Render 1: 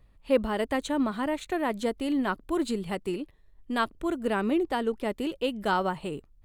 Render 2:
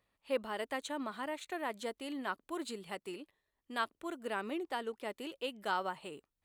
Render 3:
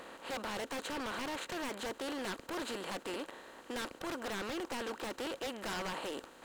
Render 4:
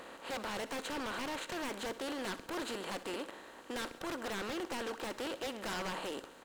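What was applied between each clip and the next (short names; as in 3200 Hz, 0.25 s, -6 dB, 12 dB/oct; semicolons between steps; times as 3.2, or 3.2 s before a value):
HPF 700 Hz 6 dB/oct; gain -6 dB
per-bin compression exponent 0.4; wavefolder -30 dBFS; gain -3 dB
feedback echo 64 ms, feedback 56%, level -16 dB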